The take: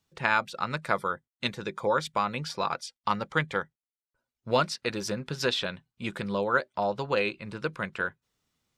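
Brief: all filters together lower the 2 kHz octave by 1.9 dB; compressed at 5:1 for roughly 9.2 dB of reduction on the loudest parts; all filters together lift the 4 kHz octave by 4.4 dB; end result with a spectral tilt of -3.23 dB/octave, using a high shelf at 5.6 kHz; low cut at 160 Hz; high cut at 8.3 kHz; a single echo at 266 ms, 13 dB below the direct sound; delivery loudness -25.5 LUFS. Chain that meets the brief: high-pass 160 Hz; low-pass 8.3 kHz; peaking EQ 2 kHz -4.5 dB; peaking EQ 4 kHz +4 dB; treble shelf 5.6 kHz +7 dB; compression 5:1, threshold -31 dBFS; delay 266 ms -13 dB; trim +10.5 dB

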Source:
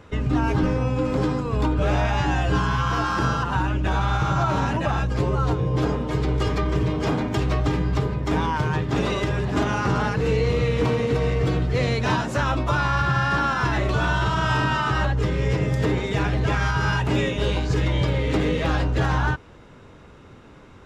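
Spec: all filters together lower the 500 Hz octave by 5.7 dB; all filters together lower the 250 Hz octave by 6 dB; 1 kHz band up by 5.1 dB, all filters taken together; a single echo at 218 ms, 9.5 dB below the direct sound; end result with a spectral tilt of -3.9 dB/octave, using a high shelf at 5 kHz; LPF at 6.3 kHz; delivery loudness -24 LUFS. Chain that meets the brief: low-pass 6.3 kHz; peaking EQ 250 Hz -7.5 dB; peaking EQ 500 Hz -7 dB; peaking EQ 1 kHz +8 dB; treble shelf 5 kHz +7.5 dB; delay 218 ms -9.5 dB; trim -2.5 dB

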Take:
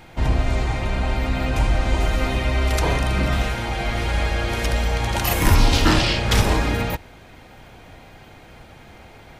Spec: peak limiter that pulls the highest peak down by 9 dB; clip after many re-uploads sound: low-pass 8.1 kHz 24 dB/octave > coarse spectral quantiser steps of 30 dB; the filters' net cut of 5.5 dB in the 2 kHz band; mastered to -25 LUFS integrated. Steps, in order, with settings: peaking EQ 2 kHz -7 dB; peak limiter -13.5 dBFS; low-pass 8.1 kHz 24 dB/octave; coarse spectral quantiser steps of 30 dB

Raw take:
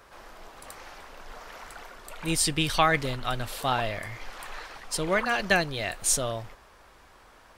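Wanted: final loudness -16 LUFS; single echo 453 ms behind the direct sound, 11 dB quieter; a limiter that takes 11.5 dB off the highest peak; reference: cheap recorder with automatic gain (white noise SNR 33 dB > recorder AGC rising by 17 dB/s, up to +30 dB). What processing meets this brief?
peak limiter -19.5 dBFS; delay 453 ms -11 dB; white noise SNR 33 dB; recorder AGC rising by 17 dB/s, up to +30 dB; trim +16 dB

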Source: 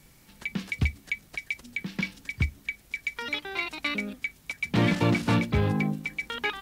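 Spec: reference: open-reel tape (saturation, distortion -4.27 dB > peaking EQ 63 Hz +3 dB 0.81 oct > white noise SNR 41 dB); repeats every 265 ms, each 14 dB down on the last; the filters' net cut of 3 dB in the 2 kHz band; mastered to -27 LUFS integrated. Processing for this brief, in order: peaking EQ 2 kHz -3.5 dB; feedback delay 265 ms, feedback 20%, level -14 dB; saturation -32.5 dBFS; peaking EQ 63 Hz +3 dB 0.81 oct; white noise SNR 41 dB; trim +11 dB

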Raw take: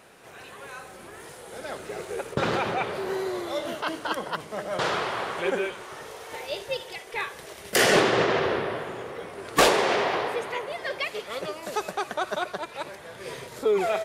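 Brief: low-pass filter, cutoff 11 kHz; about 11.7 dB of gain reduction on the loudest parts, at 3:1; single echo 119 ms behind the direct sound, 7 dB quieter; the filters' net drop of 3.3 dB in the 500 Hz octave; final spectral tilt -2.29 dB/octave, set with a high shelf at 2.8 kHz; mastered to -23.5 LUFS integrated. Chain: low-pass 11 kHz; peaking EQ 500 Hz -4.5 dB; treble shelf 2.8 kHz +6.5 dB; compression 3:1, threshold -30 dBFS; delay 119 ms -7 dB; trim +9 dB

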